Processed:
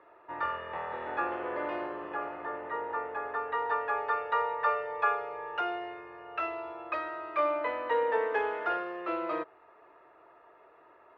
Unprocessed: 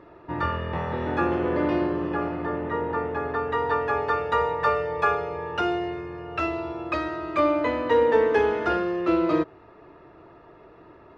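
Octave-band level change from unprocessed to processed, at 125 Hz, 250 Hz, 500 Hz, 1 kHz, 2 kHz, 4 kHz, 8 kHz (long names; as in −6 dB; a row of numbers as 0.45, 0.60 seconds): below −25 dB, −16.5 dB, −9.5 dB, −4.5 dB, −5.0 dB, −9.0 dB, can't be measured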